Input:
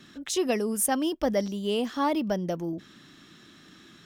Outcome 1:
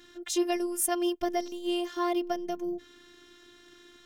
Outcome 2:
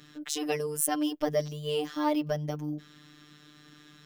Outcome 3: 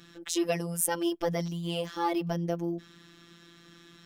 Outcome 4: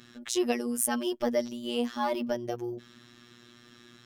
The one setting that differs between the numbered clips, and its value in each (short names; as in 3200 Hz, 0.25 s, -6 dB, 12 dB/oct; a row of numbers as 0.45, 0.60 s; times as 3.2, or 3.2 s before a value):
robotiser, frequency: 350, 150, 170, 120 Hz